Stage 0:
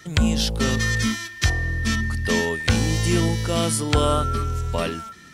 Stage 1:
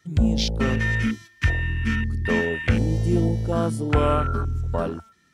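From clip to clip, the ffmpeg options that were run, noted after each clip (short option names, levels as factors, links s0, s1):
-af "afwtdn=0.0501"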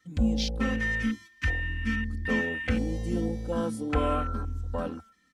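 -af "aecho=1:1:3.9:0.87,volume=0.376"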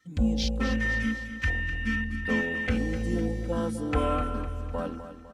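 -af "aecho=1:1:252|504|756|1008|1260:0.282|0.135|0.0649|0.0312|0.015"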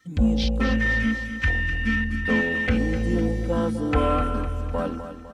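-filter_complex "[0:a]acrossover=split=4700[s0][s1];[s1]acompressor=threshold=0.00141:ratio=4:attack=1:release=60[s2];[s0][s2]amix=inputs=2:normalize=0,asplit=2[s3][s4];[s4]asoftclip=type=tanh:threshold=0.0355,volume=0.398[s5];[s3][s5]amix=inputs=2:normalize=0,volume=1.5"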